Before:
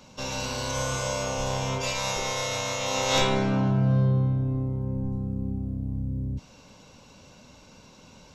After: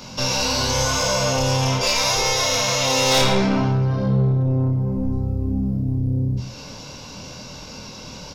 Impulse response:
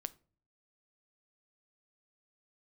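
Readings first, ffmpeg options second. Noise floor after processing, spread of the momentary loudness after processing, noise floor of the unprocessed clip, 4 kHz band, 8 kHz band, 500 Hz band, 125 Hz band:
-38 dBFS, 18 LU, -52 dBFS, +10.5 dB, +9.5 dB, +7.0 dB, +5.5 dB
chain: -filter_complex "[0:a]equalizer=f=125:t=o:w=0.33:g=4,equalizer=f=5k:t=o:w=0.33:g=8,equalizer=f=8k:t=o:w=0.33:g=-7,asplit=2[a][b];[b]acompressor=threshold=-37dB:ratio=6,volume=1dB[c];[a][c]amix=inputs=2:normalize=0,flanger=delay=22.5:depth=5.8:speed=0.66,asoftclip=type=tanh:threshold=-21.5dB,asplit=2[d][e];[e]adelay=110.8,volume=-11dB,highshelf=f=4k:g=-2.49[f];[d][f]amix=inputs=2:normalize=0,asplit=2[g][h];[1:a]atrim=start_sample=2205,highshelf=f=4.8k:g=9.5[i];[h][i]afir=irnorm=-1:irlink=0,volume=-4dB[j];[g][j]amix=inputs=2:normalize=0,volume=6dB"

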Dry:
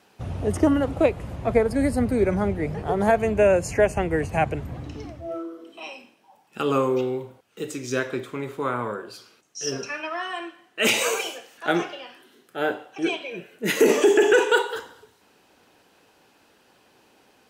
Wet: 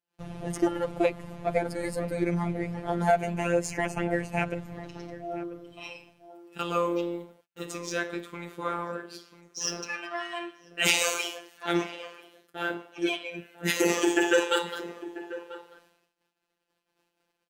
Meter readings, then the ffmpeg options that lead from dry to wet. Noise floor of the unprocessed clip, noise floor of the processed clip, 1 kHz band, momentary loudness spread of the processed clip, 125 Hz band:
-60 dBFS, -81 dBFS, -4.0 dB, 18 LU, -5.0 dB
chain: -filter_complex "[0:a]highshelf=f=3k:g=8.5,asplit=2[a][b];[b]adelay=991.3,volume=-14dB,highshelf=f=4k:g=-22.3[c];[a][c]amix=inputs=2:normalize=0,asplit=2[d][e];[e]adynamicsmooth=sensitivity=5:basefreq=4k,volume=0dB[f];[d][f]amix=inputs=2:normalize=0,afftfilt=real='hypot(re,im)*cos(PI*b)':imag='0':win_size=1024:overlap=0.75,agate=range=-30dB:threshold=-52dB:ratio=16:detection=peak,volume=-8dB"

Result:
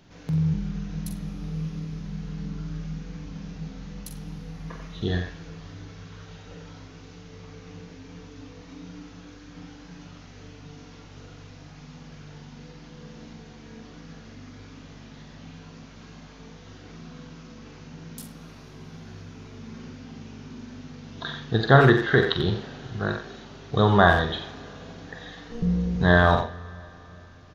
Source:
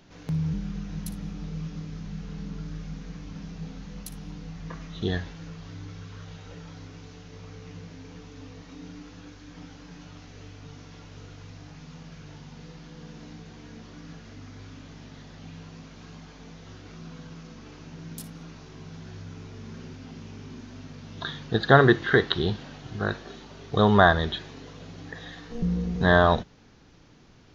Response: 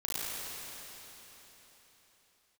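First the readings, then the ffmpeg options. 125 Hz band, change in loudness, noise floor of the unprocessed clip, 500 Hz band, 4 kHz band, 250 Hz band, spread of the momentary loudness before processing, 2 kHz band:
+3.0 dB, +1.5 dB, -48 dBFS, +0.5 dB, +0.5 dB, +1.5 dB, 24 LU, +1.0 dB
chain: -filter_complex "[0:a]equalizer=f=120:w=1.8:g=4.5,asplit=2[a][b];[b]adelay=45,volume=-8dB[c];[a][c]amix=inputs=2:normalize=0,asplit=2[d][e];[e]adelay=90,highpass=300,lowpass=3.4k,asoftclip=type=hard:threshold=-9.5dB,volume=-7dB[f];[d][f]amix=inputs=2:normalize=0,asplit=2[g][h];[1:a]atrim=start_sample=2205[i];[h][i]afir=irnorm=-1:irlink=0,volume=-26dB[j];[g][j]amix=inputs=2:normalize=0,volume=-1dB"

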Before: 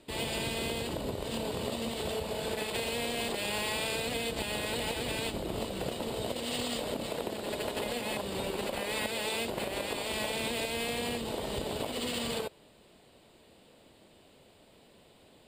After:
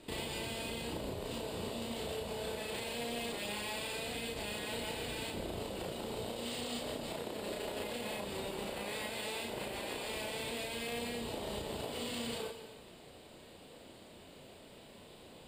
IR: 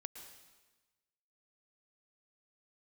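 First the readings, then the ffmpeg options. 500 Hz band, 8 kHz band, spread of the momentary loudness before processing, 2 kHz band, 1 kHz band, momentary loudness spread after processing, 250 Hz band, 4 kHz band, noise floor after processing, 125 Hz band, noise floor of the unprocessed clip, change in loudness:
-5.5 dB, -6.0 dB, 3 LU, -6.0 dB, -5.5 dB, 16 LU, -5.0 dB, -6.0 dB, -55 dBFS, -5.5 dB, -60 dBFS, -5.5 dB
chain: -filter_complex "[0:a]acompressor=threshold=-42dB:ratio=6,asplit=2[a][b];[1:a]atrim=start_sample=2205,adelay=34[c];[b][c]afir=irnorm=-1:irlink=0,volume=4dB[d];[a][d]amix=inputs=2:normalize=0,volume=1.5dB"

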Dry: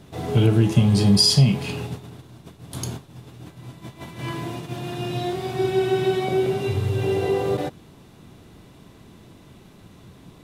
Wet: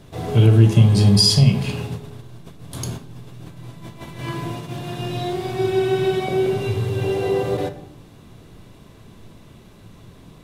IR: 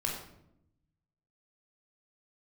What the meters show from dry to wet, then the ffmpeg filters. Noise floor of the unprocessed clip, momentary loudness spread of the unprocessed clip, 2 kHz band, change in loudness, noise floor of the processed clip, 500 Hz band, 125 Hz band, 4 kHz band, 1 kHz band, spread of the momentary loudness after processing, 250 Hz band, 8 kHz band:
-49 dBFS, 22 LU, +1.5 dB, +2.5 dB, -46 dBFS, +1.5 dB, +4.5 dB, +1.5 dB, +1.0 dB, 20 LU, +1.0 dB, +1.0 dB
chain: -filter_complex "[0:a]asplit=2[a][b];[1:a]atrim=start_sample=2205,lowshelf=f=63:g=10.5[c];[b][c]afir=irnorm=-1:irlink=0,volume=-11dB[d];[a][d]amix=inputs=2:normalize=0,volume=-1dB"

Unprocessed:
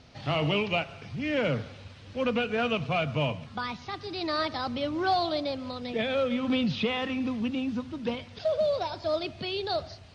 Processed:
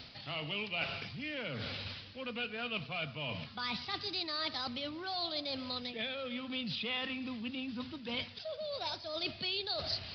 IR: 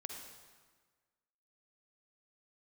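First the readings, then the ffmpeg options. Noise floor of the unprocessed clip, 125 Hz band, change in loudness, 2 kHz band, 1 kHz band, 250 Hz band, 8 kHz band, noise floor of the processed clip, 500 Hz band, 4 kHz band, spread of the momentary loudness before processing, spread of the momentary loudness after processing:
-48 dBFS, -12.0 dB, -8.0 dB, -5.5 dB, -11.5 dB, -12.0 dB, n/a, -51 dBFS, -13.5 dB, -1.0 dB, 8 LU, 5 LU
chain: -af "areverse,acompressor=threshold=-41dB:ratio=16,areverse,aresample=11025,aresample=44100,crystalizer=i=8.5:c=0,equalizer=f=210:w=1.5:g=3"

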